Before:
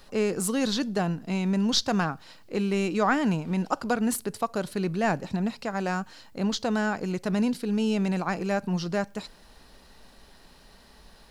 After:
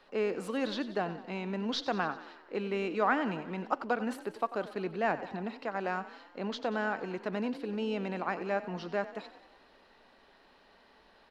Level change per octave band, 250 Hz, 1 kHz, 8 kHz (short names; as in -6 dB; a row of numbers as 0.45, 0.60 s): -10.0 dB, -3.5 dB, under -15 dB